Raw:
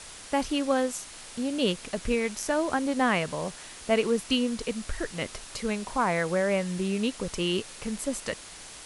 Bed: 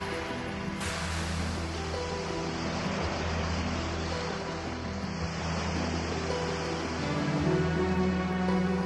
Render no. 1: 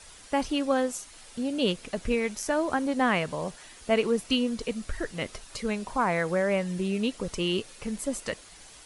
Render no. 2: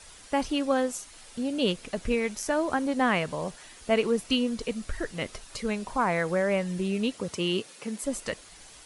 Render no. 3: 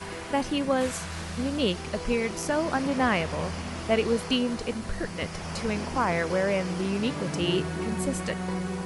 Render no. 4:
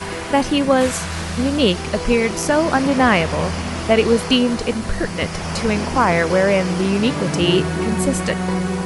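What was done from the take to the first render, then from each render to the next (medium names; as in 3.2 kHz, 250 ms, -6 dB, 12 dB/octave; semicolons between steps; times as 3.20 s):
noise reduction 8 dB, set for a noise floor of -45 dBFS
7.12–8.03 s: high-pass 61 Hz -> 230 Hz 24 dB/octave
add bed -3.5 dB
trim +10 dB; peak limiter -2 dBFS, peak gain reduction 2.5 dB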